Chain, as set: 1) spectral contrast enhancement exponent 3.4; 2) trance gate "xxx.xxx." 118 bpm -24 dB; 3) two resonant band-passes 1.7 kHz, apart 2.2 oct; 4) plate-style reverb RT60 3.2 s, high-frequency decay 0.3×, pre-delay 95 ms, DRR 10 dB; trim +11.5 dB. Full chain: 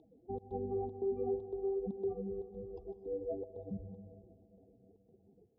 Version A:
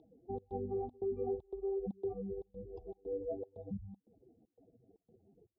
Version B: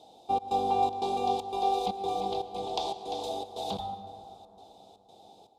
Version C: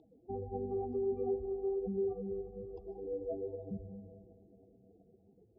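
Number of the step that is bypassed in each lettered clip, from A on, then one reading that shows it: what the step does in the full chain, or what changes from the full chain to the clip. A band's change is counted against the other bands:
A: 4, loudness change -1.5 LU; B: 1, 1 kHz band +21.0 dB; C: 2, momentary loudness spread change +2 LU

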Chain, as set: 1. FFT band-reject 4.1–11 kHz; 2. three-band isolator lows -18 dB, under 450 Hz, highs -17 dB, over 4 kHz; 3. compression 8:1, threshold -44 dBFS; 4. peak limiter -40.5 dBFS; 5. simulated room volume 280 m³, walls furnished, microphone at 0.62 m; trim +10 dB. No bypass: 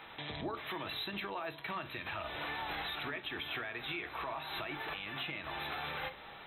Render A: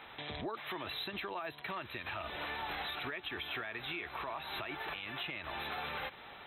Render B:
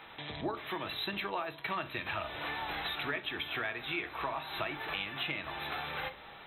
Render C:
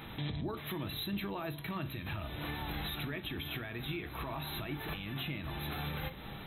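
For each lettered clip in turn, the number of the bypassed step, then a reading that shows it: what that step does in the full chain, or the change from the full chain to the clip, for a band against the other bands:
5, echo-to-direct -9.5 dB to none; 4, mean gain reduction 2.0 dB; 2, 125 Hz band +12.5 dB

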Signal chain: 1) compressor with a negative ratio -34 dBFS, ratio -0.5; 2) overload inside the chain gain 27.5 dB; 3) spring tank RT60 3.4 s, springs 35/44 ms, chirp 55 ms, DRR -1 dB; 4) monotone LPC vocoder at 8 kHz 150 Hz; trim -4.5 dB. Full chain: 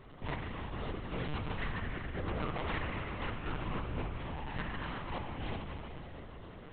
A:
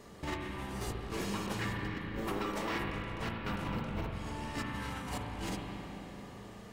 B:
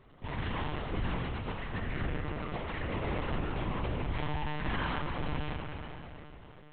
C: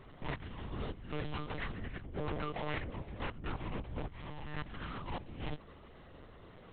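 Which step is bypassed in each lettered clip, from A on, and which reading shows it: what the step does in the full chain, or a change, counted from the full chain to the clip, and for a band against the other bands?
4, 250 Hz band +2.0 dB; 1, loudness change +3.5 LU; 3, momentary loudness spread change +8 LU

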